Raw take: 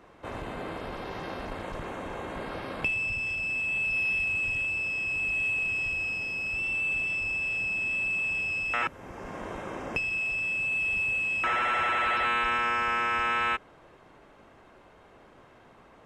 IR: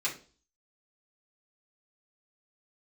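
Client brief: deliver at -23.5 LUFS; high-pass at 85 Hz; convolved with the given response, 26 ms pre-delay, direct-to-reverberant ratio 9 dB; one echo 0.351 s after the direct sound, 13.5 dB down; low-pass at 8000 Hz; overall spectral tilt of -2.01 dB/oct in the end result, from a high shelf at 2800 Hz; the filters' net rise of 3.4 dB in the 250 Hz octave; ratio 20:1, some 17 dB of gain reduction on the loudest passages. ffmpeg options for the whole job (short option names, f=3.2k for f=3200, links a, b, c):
-filter_complex "[0:a]highpass=85,lowpass=8k,equalizer=f=250:t=o:g=4.5,highshelf=f=2.8k:g=3.5,acompressor=threshold=-40dB:ratio=20,aecho=1:1:351:0.211,asplit=2[a][b];[1:a]atrim=start_sample=2205,adelay=26[c];[b][c]afir=irnorm=-1:irlink=0,volume=-15dB[d];[a][d]amix=inputs=2:normalize=0,volume=16dB"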